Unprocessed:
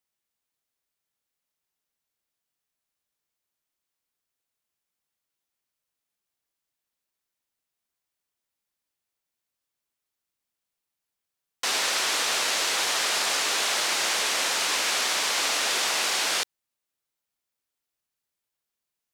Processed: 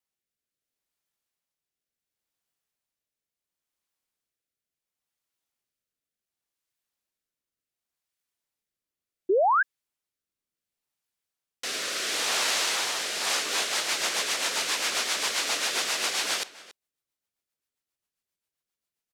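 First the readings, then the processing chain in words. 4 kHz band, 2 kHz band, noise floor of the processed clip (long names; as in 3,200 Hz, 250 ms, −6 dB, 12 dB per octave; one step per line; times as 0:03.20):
−2.5 dB, −2.0 dB, below −85 dBFS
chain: slap from a distant wall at 48 metres, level −17 dB
rotating-speaker cabinet horn 0.7 Hz, later 7.5 Hz, at 0:12.98
sound drawn into the spectrogram rise, 0:09.29–0:09.63, 350–1,700 Hz −21 dBFS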